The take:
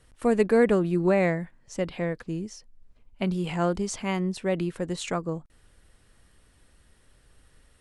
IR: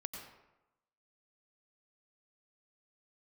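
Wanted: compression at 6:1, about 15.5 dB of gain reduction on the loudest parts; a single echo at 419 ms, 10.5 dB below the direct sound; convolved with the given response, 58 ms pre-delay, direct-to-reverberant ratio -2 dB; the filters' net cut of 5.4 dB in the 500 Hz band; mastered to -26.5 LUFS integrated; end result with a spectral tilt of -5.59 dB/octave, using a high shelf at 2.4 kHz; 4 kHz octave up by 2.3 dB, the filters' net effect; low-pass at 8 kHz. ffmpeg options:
-filter_complex "[0:a]lowpass=8000,equalizer=f=500:t=o:g=-6.5,highshelf=f=2400:g=-4.5,equalizer=f=4000:t=o:g=7.5,acompressor=threshold=0.0141:ratio=6,aecho=1:1:419:0.299,asplit=2[s0][s1];[1:a]atrim=start_sample=2205,adelay=58[s2];[s1][s2]afir=irnorm=-1:irlink=0,volume=1.5[s3];[s0][s3]amix=inputs=2:normalize=0,volume=2.99"

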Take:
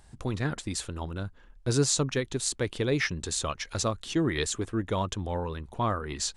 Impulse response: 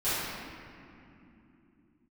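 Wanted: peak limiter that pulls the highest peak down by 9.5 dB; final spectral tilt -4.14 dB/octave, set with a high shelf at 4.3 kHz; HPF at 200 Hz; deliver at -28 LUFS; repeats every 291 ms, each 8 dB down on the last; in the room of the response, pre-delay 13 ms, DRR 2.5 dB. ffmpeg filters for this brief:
-filter_complex "[0:a]highpass=200,highshelf=f=4300:g=-9,alimiter=limit=0.0668:level=0:latency=1,aecho=1:1:291|582|873|1164|1455:0.398|0.159|0.0637|0.0255|0.0102,asplit=2[s0][s1];[1:a]atrim=start_sample=2205,adelay=13[s2];[s1][s2]afir=irnorm=-1:irlink=0,volume=0.2[s3];[s0][s3]amix=inputs=2:normalize=0,volume=1.78"

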